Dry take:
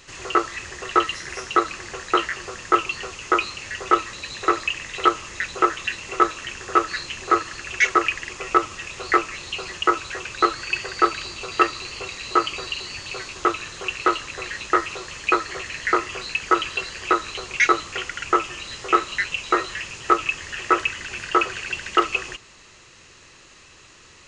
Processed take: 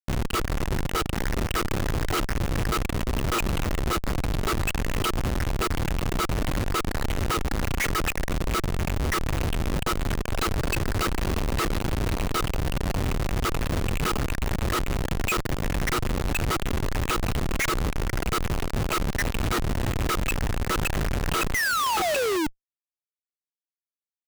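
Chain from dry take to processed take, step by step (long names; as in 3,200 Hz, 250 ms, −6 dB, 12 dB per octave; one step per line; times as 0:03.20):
output level in coarse steps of 22 dB
sound drawn into the spectrogram fall, 0:21.54–0:22.47, 290–2,100 Hz −29 dBFS
comparator with hysteresis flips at −36.5 dBFS
level +7.5 dB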